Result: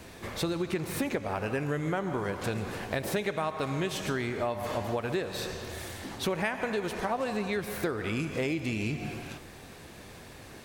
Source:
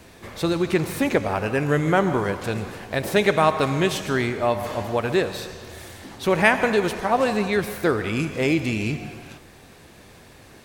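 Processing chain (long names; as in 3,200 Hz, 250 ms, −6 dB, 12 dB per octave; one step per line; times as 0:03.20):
downward compressor 6 to 1, threshold −28 dBFS, peak gain reduction 15.5 dB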